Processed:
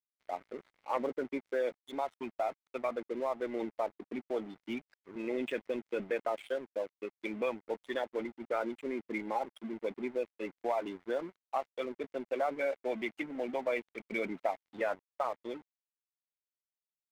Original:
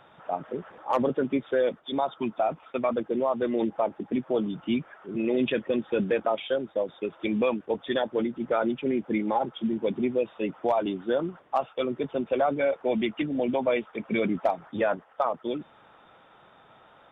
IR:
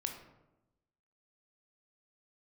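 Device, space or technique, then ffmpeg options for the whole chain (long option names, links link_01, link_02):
pocket radio on a weak battery: -af "highpass=280,lowpass=3100,aeval=exprs='sgn(val(0))*max(abs(val(0))-0.00708,0)':channel_layout=same,equalizer=frequency=2100:width_type=o:width=0.26:gain=8,volume=-7dB"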